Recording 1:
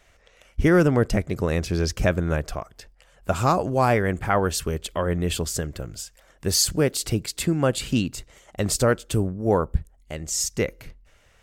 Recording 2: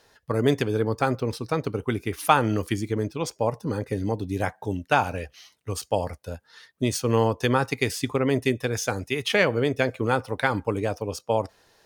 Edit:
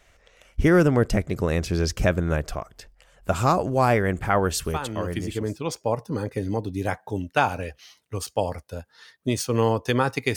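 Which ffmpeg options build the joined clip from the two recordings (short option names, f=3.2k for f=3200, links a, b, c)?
-filter_complex "[0:a]apad=whole_dur=10.36,atrim=end=10.36,atrim=end=5.6,asetpts=PTS-STARTPTS[a];[1:a]atrim=start=2.07:end=7.91,asetpts=PTS-STARTPTS[b];[a][b]acrossfade=d=1.08:c1=tri:c2=tri"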